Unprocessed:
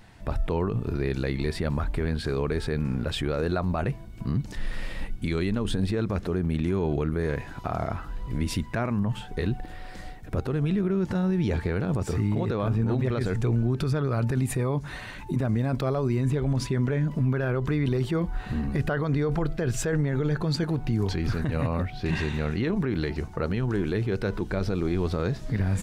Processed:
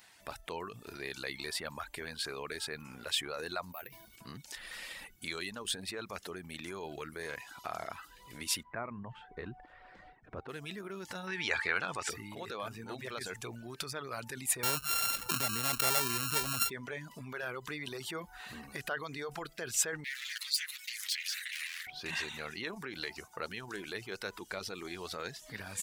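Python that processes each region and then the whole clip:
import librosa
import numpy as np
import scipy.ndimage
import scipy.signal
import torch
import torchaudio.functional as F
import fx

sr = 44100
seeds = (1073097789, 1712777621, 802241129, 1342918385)

y = fx.chain(x, sr, fx.over_compress(threshold_db=-33.0, ratio=-1.0),
    fx.resample_bad(factor=3, down='filtered', up='hold'), at=(3.72, 4.16))
y = fx.chain(y, sr, fx.lowpass(hz=1400.0, slope=12),
    fx.low_shelf(hz=150.0, db=7.5), at=(8.63, 10.49))
y = fx.chain(y, sr, fx.lowpass(hz=8300.0, slope=12),
    fx.peak_eq(hz=1800.0, db=12.5, octaves=2.2), at=(11.27, 12.1))
y = fx.chain(y, sr, fx.sample_sort(block=32),
    fx.low_shelf(hz=270.0, db=6.5),
    fx.env_flatten(amount_pct=50), at=(14.63, 16.7))
y = fx.chain(y, sr, fx.lower_of_two(delay_ms=9.5),
    fx.ellip_highpass(hz=1900.0, order=4, stop_db=80),
    fx.env_flatten(amount_pct=50), at=(20.04, 21.87))
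y = fx.tilt_eq(y, sr, slope=3.5)
y = fx.dereverb_blind(y, sr, rt60_s=0.55)
y = fx.low_shelf(y, sr, hz=360.0, db=-9.0)
y = y * librosa.db_to_amplitude(-5.5)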